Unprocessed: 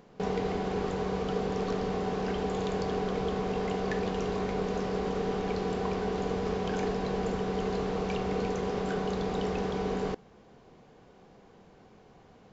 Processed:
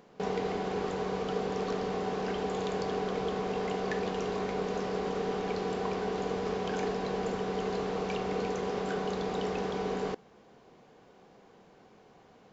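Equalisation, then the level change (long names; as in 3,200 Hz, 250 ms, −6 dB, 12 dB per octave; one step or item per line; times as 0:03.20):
low-shelf EQ 130 Hz −11.5 dB
0.0 dB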